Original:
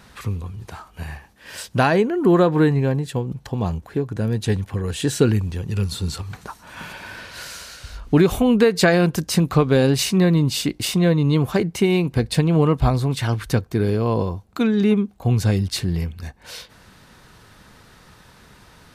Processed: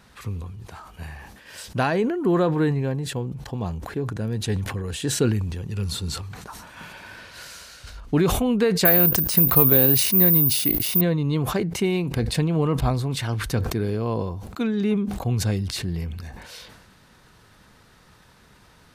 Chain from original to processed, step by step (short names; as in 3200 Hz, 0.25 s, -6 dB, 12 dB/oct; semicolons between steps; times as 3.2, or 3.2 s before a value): 8.85–11.01 careless resampling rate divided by 3×, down filtered, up zero stuff; sustainer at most 44 dB/s; gain -5.5 dB